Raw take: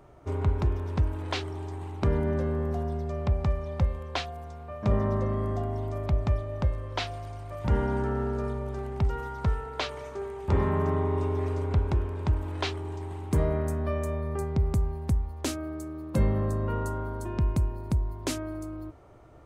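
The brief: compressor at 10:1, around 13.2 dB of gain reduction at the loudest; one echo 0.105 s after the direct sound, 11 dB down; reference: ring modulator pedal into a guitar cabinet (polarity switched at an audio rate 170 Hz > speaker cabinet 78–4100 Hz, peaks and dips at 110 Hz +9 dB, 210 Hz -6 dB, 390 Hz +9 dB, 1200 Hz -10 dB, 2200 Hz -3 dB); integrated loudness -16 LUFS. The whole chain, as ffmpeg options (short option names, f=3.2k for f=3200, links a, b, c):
-af "acompressor=threshold=-33dB:ratio=10,aecho=1:1:105:0.282,aeval=exprs='val(0)*sgn(sin(2*PI*170*n/s))':c=same,highpass=78,equalizer=f=110:t=q:w=4:g=9,equalizer=f=210:t=q:w=4:g=-6,equalizer=f=390:t=q:w=4:g=9,equalizer=f=1.2k:t=q:w=4:g=-10,equalizer=f=2.2k:t=q:w=4:g=-3,lowpass=f=4.1k:w=0.5412,lowpass=f=4.1k:w=1.3066,volume=20dB"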